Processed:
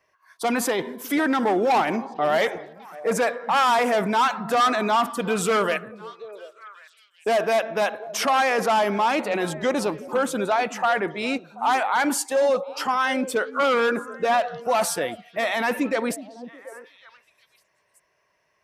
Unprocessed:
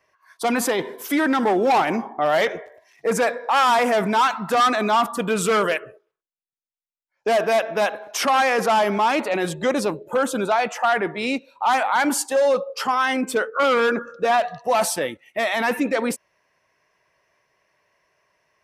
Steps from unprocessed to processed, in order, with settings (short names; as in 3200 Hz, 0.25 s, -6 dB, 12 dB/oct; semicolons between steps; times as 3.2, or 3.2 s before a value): delay with a stepping band-pass 0.367 s, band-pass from 200 Hz, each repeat 1.4 oct, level -12 dB; gain -2 dB